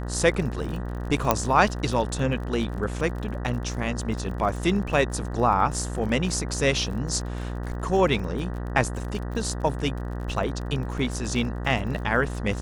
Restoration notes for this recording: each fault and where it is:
mains buzz 60 Hz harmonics 32 −31 dBFS
surface crackle 44 per second −34 dBFS
0:01.31: click −4 dBFS

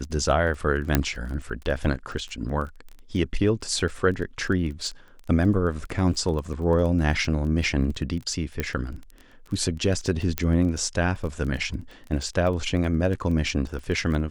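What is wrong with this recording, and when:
surface crackle 19 per second −32 dBFS
0:00.95: click −4 dBFS
0:08.60: click −12 dBFS
0:10.38: click −8 dBFS

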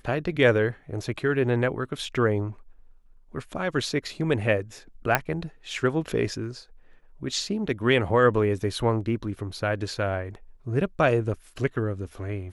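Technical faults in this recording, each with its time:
0:05.15: click −6 dBFS

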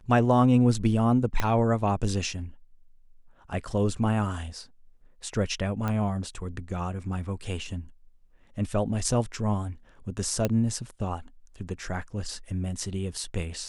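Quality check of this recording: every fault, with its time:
0:01.40: click −11 dBFS
0:05.88: click −17 dBFS
0:10.45: click −11 dBFS

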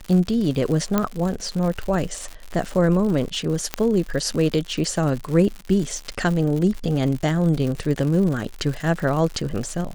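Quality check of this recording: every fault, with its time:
surface crackle 130 per second −27 dBFS
0:00.98: click −6 dBFS
0:03.74: click −6 dBFS

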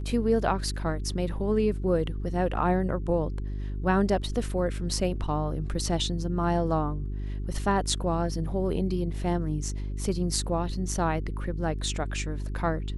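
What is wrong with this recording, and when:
mains hum 50 Hz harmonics 8 −32 dBFS

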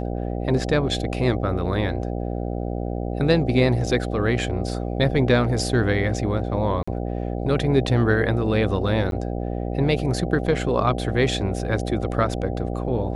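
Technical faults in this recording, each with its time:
mains buzz 60 Hz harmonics 13 −27 dBFS
0:06.83–0:06.88: drop-out 45 ms
0:09.11–0:09.12: drop-out 12 ms

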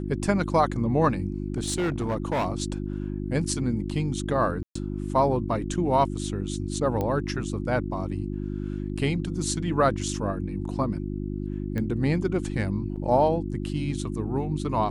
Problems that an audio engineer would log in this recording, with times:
mains hum 50 Hz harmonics 7 −31 dBFS
0:01.46–0:02.47: clipping −22 dBFS
0:04.63–0:04.75: drop-out 124 ms
0:07.01: click −16 dBFS
0:11.78: click −18 dBFS
0:12.96–0:12.97: drop-out 5.9 ms

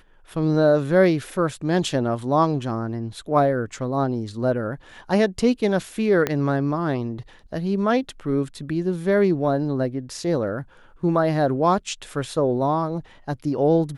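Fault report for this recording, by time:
0:06.27: click −8 dBFS

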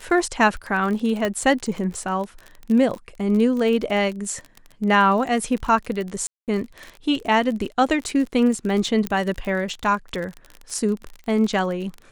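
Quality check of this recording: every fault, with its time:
surface crackle 34 per second −27 dBFS
0:01.25: click −10 dBFS
0:06.27–0:06.48: drop-out 208 ms
0:09.07: click −9 dBFS

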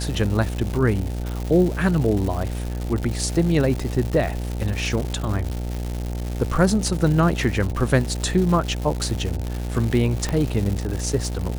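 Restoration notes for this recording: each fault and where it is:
mains buzz 60 Hz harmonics 15 −27 dBFS
surface crackle 270 per second −26 dBFS
0:10.29: click −11 dBFS

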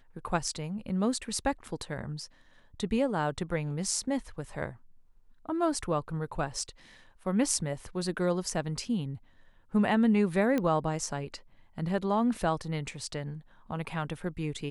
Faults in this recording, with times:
0:10.58: click −17 dBFS

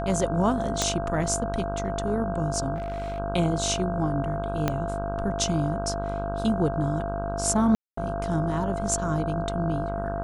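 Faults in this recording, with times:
mains buzz 50 Hz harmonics 32 −32 dBFS
whistle 680 Hz −30 dBFS
0:00.82: click −9 dBFS
0:02.75–0:03.20: clipping −27.5 dBFS
0:04.68: click −10 dBFS
0:07.75–0:07.97: drop-out 224 ms

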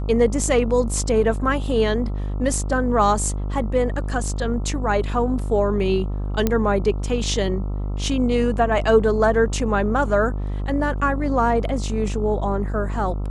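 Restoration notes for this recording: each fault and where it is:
mains buzz 50 Hz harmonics 27 −25 dBFS
0:06.47: click −6 dBFS

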